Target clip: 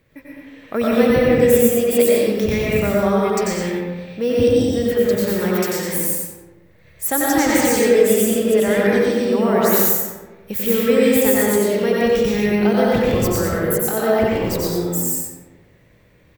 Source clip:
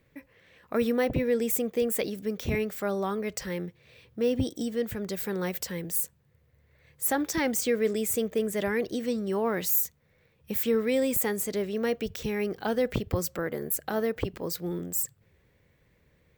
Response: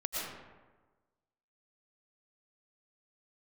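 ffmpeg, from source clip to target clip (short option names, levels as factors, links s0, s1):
-filter_complex "[0:a]aecho=1:1:91|182|273:0.631|0.151|0.0363[s0];[1:a]atrim=start_sample=2205[s1];[s0][s1]afir=irnorm=-1:irlink=0,volume=2.11"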